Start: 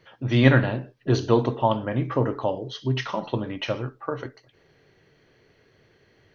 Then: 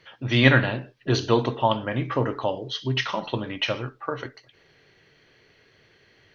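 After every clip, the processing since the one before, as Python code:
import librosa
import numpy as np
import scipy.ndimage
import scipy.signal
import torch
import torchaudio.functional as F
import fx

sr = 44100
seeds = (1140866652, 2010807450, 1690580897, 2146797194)

y = fx.peak_eq(x, sr, hz=3100.0, db=8.5, octaves=2.6)
y = y * librosa.db_to_amplitude(-2.0)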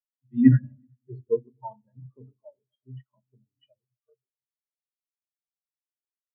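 y = fx.echo_heads(x, sr, ms=125, heads='second and third', feedback_pct=55, wet_db=-15)
y = fx.room_shoebox(y, sr, seeds[0], volume_m3=2800.0, walls='furnished', distance_m=1.4)
y = fx.spectral_expand(y, sr, expansion=4.0)
y = y * librosa.db_to_amplitude(-3.0)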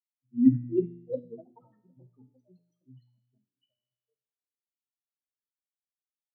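y = fx.formant_cascade(x, sr, vowel='i')
y = fx.comb_fb(y, sr, f0_hz=61.0, decay_s=1.1, harmonics='all', damping=0.0, mix_pct=70)
y = fx.echo_pitch(y, sr, ms=454, semitones=6, count=2, db_per_echo=-6.0)
y = y * librosa.db_to_amplitude(6.5)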